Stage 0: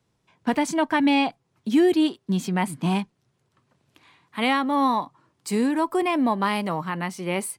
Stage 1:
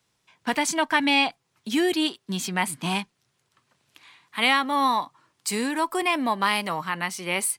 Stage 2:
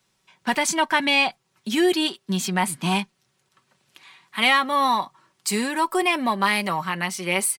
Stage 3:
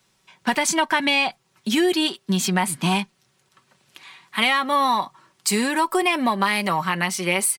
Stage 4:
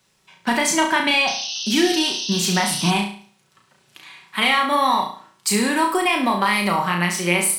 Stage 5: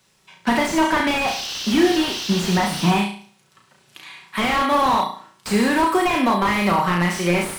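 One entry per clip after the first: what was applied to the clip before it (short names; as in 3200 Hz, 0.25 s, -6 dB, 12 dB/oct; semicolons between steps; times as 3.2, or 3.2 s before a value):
tilt shelf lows -7 dB, about 900 Hz
comb 5.3 ms, depth 45%; in parallel at -11 dB: soft clip -17.5 dBFS, distortion -13 dB
compressor 4:1, threshold -21 dBFS, peak gain reduction 7 dB; gain +4.5 dB
flutter echo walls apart 5.9 m, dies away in 0.47 s; painted sound noise, 1.27–2.91, 2600–6300 Hz -28 dBFS
slew limiter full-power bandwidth 140 Hz; gain +2.5 dB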